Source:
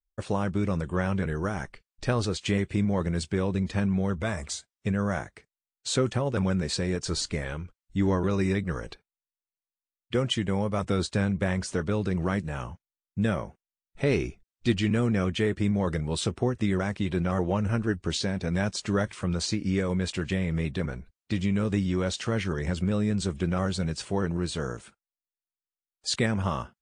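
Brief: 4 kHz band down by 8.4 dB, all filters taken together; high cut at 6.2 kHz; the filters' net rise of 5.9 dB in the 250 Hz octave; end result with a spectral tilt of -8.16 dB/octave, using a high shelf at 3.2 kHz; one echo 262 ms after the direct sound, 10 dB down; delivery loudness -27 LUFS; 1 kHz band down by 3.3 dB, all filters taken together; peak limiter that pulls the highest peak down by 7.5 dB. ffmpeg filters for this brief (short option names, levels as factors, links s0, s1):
-af "lowpass=6200,equalizer=f=250:t=o:g=8.5,equalizer=f=1000:t=o:g=-4,highshelf=f=3200:g=-5,equalizer=f=4000:t=o:g=-6,alimiter=limit=0.168:level=0:latency=1,aecho=1:1:262:0.316,volume=0.944"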